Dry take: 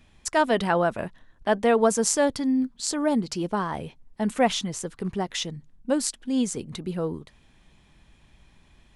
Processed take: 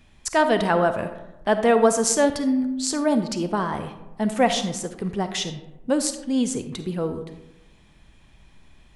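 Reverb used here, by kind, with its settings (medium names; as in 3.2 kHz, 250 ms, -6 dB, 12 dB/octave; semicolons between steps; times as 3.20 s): algorithmic reverb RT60 1 s, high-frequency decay 0.45×, pre-delay 10 ms, DRR 8.5 dB; trim +2 dB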